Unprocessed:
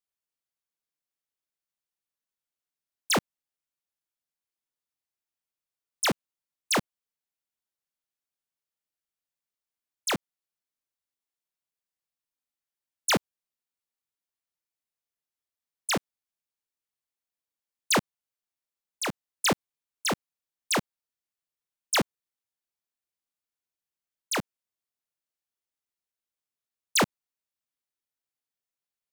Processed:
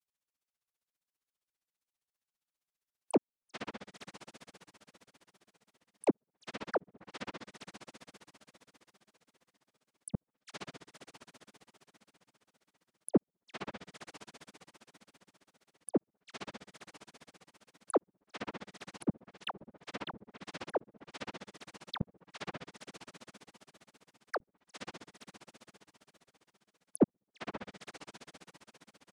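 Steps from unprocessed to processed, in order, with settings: echo that smears into a reverb 516 ms, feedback 43%, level -14.5 dB; granulator 47 ms, grains 15 per s, spray 10 ms, pitch spread up and down by 0 st; low-pass that closes with the level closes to 470 Hz, closed at -36 dBFS; trim +5 dB

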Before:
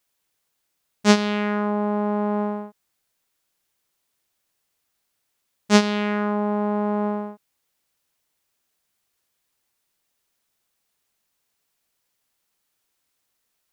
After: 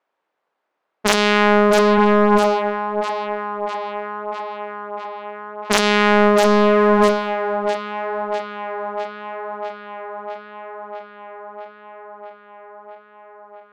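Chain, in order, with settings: in parallel at -4.5 dB: hard clipper -13.5 dBFS, distortion -13 dB; on the sum: high-pass 460 Hz 12 dB/octave; integer overflow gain 1.5 dB; level-controlled noise filter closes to 1.1 kHz, open at -22.5 dBFS; on a send: tape echo 652 ms, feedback 80%, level -9 dB, low-pass 4.7 kHz; on the sum: loudness maximiser +9 dB; loudspeaker Doppler distortion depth 0.55 ms

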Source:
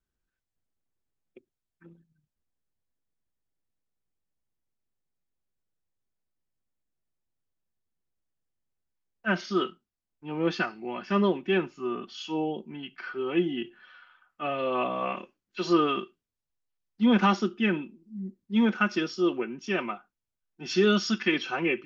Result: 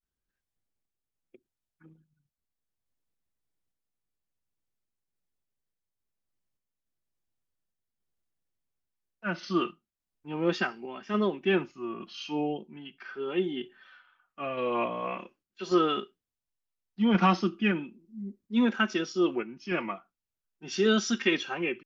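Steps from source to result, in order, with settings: vibrato 0.39 Hz 96 cents; random-step tremolo 3.5 Hz

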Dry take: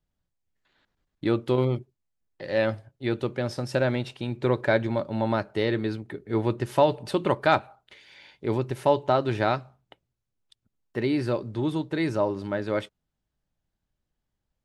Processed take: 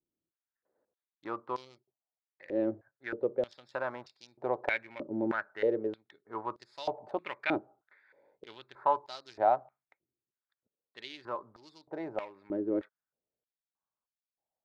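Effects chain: local Wiener filter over 15 samples; 8.48–8.99 s: peaking EQ 1.5 kHz +7 dB 0.45 oct; step-sequenced band-pass 3.2 Hz 340–5000 Hz; trim +4 dB

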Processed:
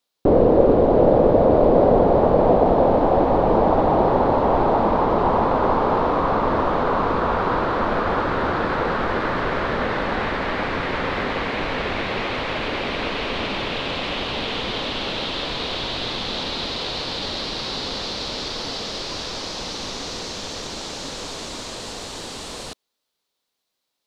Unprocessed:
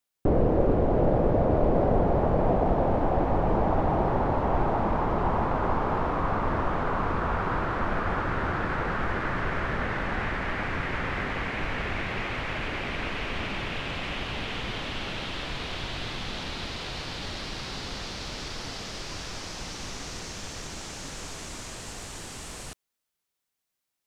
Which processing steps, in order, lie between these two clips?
graphic EQ 250/500/1000/4000 Hz +6/+9/+6/+12 dB

